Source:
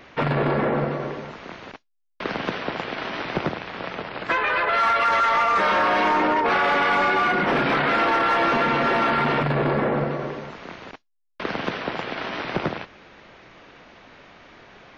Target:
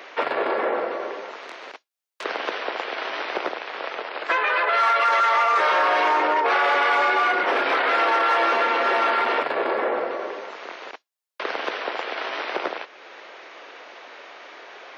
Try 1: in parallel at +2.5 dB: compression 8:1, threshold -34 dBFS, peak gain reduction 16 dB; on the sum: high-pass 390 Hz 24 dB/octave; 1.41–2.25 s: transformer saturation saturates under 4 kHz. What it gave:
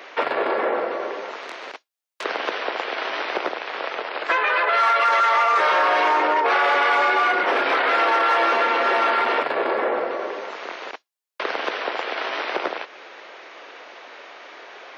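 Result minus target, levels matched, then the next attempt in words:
compression: peak gain reduction -9.5 dB
in parallel at +2.5 dB: compression 8:1, threshold -45 dBFS, peak gain reduction 25.5 dB; on the sum: high-pass 390 Hz 24 dB/octave; 1.41–2.25 s: transformer saturation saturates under 4 kHz

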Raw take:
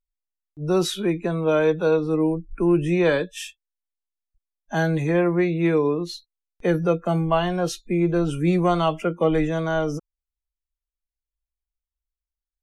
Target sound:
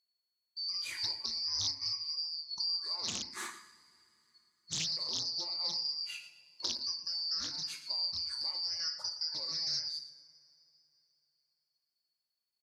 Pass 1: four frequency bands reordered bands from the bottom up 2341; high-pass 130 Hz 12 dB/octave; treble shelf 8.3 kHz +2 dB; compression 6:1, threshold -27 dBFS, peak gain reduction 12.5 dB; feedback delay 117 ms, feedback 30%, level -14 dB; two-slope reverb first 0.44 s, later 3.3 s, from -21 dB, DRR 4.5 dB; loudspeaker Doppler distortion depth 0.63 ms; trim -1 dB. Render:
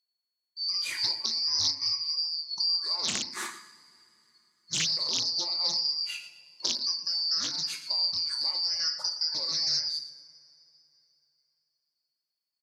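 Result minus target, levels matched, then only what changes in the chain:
compression: peak gain reduction -7 dB; 125 Hz band -3.0 dB
change: high-pass 56 Hz 12 dB/octave; change: compression 6:1, threshold -35.5 dBFS, peak gain reduction 19.5 dB

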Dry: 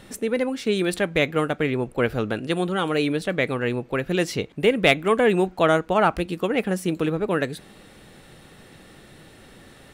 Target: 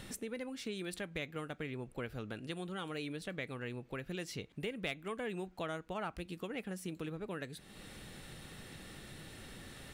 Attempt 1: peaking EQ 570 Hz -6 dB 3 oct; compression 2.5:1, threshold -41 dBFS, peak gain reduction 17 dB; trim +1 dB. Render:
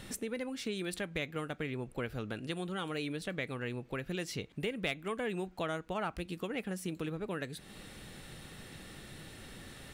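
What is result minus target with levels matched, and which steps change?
compression: peak gain reduction -4 dB
change: compression 2.5:1, threshold -47.5 dBFS, peak gain reduction 21 dB

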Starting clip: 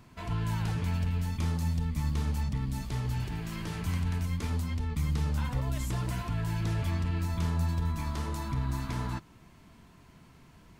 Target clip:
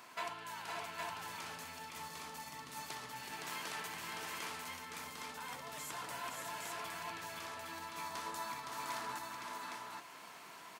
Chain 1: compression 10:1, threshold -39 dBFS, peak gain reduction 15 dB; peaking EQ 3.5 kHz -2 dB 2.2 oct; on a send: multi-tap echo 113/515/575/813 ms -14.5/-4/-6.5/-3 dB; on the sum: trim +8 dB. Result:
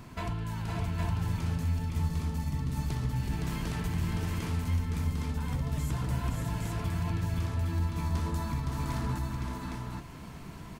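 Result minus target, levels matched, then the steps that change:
1 kHz band -10.0 dB
add after compression: high-pass 720 Hz 12 dB/octave

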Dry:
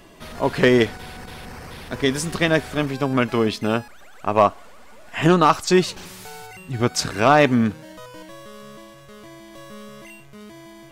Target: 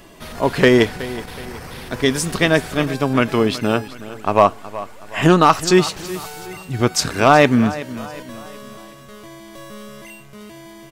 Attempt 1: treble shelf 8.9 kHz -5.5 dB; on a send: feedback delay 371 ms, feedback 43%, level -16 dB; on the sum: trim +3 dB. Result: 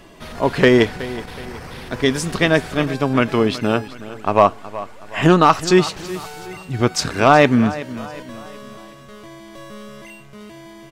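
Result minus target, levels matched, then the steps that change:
8 kHz band -3.5 dB
change: treble shelf 8.9 kHz +4.5 dB

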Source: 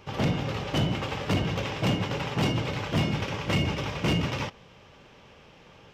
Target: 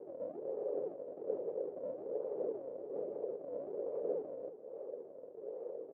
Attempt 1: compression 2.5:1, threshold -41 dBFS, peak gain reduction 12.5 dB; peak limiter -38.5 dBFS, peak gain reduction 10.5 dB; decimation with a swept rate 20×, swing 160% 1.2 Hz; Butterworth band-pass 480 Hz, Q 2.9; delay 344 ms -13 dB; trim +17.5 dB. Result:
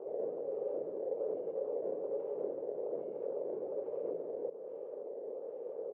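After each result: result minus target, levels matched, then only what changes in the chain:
compression: peak gain reduction -5.5 dB; decimation with a swept rate: distortion -7 dB
change: compression 2.5:1, threshold -50 dBFS, peak gain reduction 18 dB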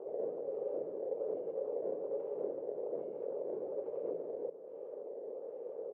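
decimation with a swept rate: distortion -7 dB
change: decimation with a swept rate 63×, swing 160% 1.2 Hz

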